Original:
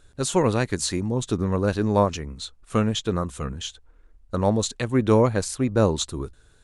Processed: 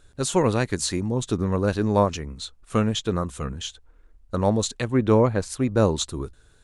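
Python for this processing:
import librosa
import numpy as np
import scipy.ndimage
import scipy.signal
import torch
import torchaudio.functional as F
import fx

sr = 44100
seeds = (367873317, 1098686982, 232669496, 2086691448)

y = fx.high_shelf(x, sr, hz=fx.line((4.85, 6400.0), (5.5, 3600.0)), db=-10.5, at=(4.85, 5.5), fade=0.02)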